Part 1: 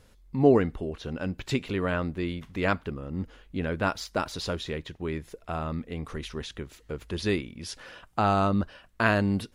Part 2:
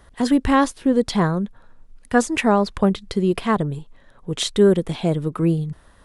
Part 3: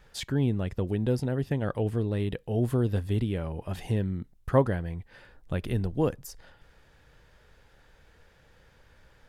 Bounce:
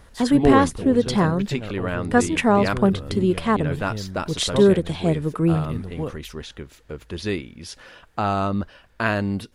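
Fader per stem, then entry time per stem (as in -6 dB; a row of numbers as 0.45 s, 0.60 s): +1.0 dB, -0.5 dB, -4.0 dB; 0.00 s, 0.00 s, 0.00 s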